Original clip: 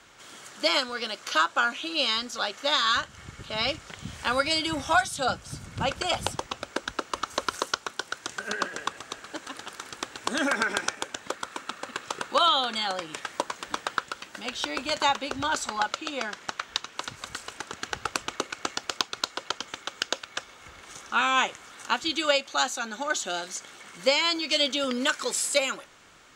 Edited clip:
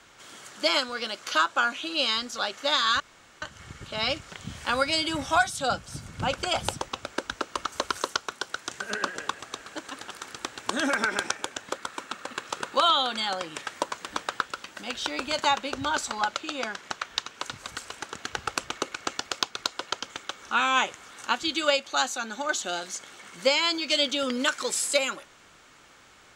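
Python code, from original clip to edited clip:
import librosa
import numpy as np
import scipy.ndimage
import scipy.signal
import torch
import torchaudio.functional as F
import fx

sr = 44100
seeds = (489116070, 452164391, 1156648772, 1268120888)

y = fx.edit(x, sr, fx.insert_room_tone(at_s=3.0, length_s=0.42),
    fx.cut(start_s=20.0, length_s=1.03), tone=tone)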